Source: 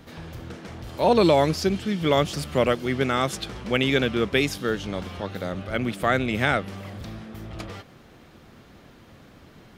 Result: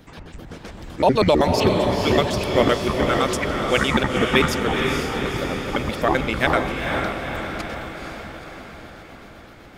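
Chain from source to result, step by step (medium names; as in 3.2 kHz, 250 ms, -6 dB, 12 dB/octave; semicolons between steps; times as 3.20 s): pitch shift switched off and on -10.5 st, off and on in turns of 64 ms; harmonic-percussive split harmonic -13 dB; echo that smears into a reverb 477 ms, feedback 60%, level -3.5 dB; trim +5 dB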